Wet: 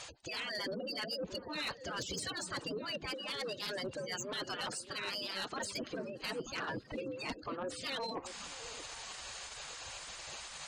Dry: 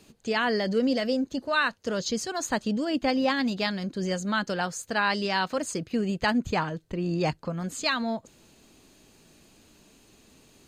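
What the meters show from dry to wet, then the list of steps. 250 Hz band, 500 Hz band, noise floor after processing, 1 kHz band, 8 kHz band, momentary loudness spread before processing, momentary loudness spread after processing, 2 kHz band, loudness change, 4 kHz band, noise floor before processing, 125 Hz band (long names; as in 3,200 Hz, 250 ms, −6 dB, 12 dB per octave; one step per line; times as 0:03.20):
−18.0 dB, −12.0 dB, −52 dBFS, −13.5 dB, −6.0 dB, 6 LU, 6 LU, −12.0 dB, −12.0 dB, −5.5 dB, −59 dBFS, −16.0 dB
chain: low-pass filter 8,500 Hz 24 dB per octave
gate on every frequency bin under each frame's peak −25 dB strong
high-pass filter 69 Hz 12 dB per octave
gate on every frequency bin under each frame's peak −15 dB weak
low-shelf EQ 460 Hz +4.5 dB
reversed playback
downward compressor 12 to 1, threshold −53 dBFS, peak gain reduction 22.5 dB
reversed playback
sine wavefolder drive 8 dB, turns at −39 dBFS
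on a send: echo through a band-pass that steps 312 ms, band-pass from 150 Hz, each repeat 1.4 octaves, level −6.5 dB
on the sum: level +6 dB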